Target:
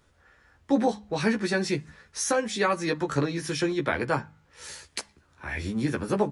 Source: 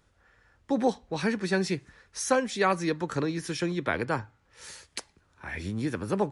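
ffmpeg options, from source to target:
ffmpeg -i in.wav -filter_complex "[0:a]alimiter=limit=-16.5dB:level=0:latency=1:release=218,asplit=2[link_01][link_02];[link_02]adelay=14,volume=-4dB[link_03];[link_01][link_03]amix=inputs=2:normalize=0,bandreject=frequency=51.98:width_type=h:width=4,bandreject=frequency=103.96:width_type=h:width=4,bandreject=frequency=155.94:width_type=h:width=4,bandreject=frequency=207.92:width_type=h:width=4,volume=2dB" out.wav

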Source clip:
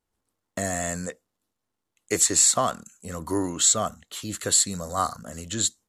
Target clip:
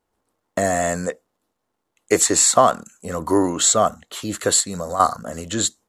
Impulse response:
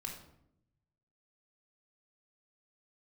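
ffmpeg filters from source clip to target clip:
-filter_complex "[0:a]equalizer=frequency=650:width=0.4:gain=9,asettb=1/sr,asplit=3[link_01][link_02][link_03];[link_01]atrim=end=4.604[link_04];[link_02]atrim=start=4.6:end=5,asetpts=PTS-STARTPTS,afade=type=in:duration=0.004:curve=qsin,afade=type=out:start_time=0.396:duration=0.004:curve=qsin,acompressor=threshold=-25dB:ratio=6[link_05];[link_03]atrim=start=4.996[link_06];[link_04][link_05]acrossfade=duration=0.004:curve1=hsin:curve2=qsin[link_07];[link_07][link_06]acrossfade=duration=0.004:curve1=qsin:curve2=hsin,volume=2dB"

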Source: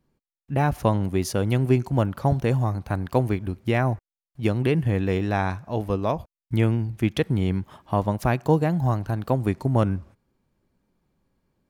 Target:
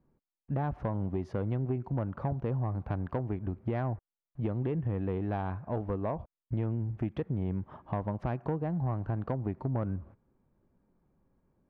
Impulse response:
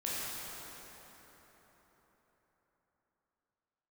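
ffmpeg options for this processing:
-af "lowpass=1300,acompressor=threshold=-28dB:ratio=5,asoftclip=type=tanh:threshold=-22.5dB"

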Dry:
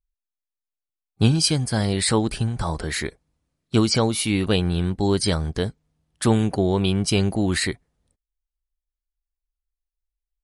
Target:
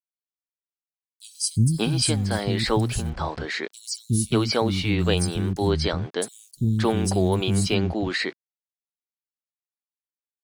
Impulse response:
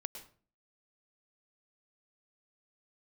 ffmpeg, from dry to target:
-filter_complex "[0:a]aeval=exprs='val(0)*gte(abs(val(0)),0.00944)':channel_layout=same,acrossover=split=240|5500[link_01][link_02][link_03];[link_01]adelay=360[link_04];[link_02]adelay=580[link_05];[link_04][link_05][link_03]amix=inputs=3:normalize=0"

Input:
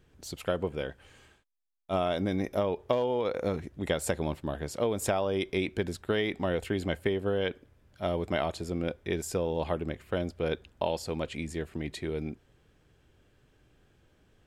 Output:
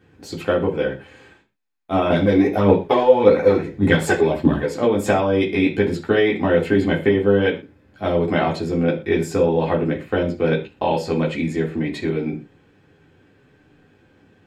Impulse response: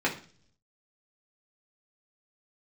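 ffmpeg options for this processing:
-filter_complex "[0:a]asettb=1/sr,asplit=3[link_01][link_02][link_03];[link_01]atrim=end=2.104[link_04];[link_02]atrim=start=2.1:end=4.67,asetpts=PTS-STARTPTS,afade=type=in:duration=0.004:curve=qsin,afade=type=out:start_time=2.566:duration=0.004:curve=qsin,aphaser=in_gain=1:out_gain=1:delay=3.1:decay=0.69:speed=1.7:type=triangular[link_05];[link_03]atrim=start=4.666[link_06];[link_04][link_05]acrossfade=duration=0.004:curve1=hsin:curve2=qsin[link_07];[link_07][link_06]acrossfade=duration=0.004:curve1=qsin:curve2=hsin[link_08];[1:a]atrim=start_sample=2205,atrim=end_sample=6174[link_09];[link_08][link_09]afir=irnorm=-1:irlink=0"

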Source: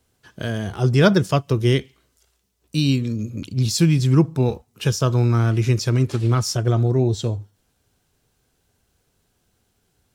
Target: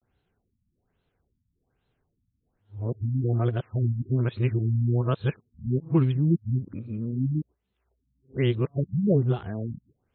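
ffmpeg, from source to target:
ffmpeg -i in.wav -af "areverse,afftfilt=real='re*lt(b*sr/1024,250*pow(4300/250,0.5+0.5*sin(2*PI*1.2*pts/sr)))':imag='im*lt(b*sr/1024,250*pow(4300/250,0.5+0.5*sin(2*PI*1.2*pts/sr)))':win_size=1024:overlap=0.75,volume=-6dB" out.wav

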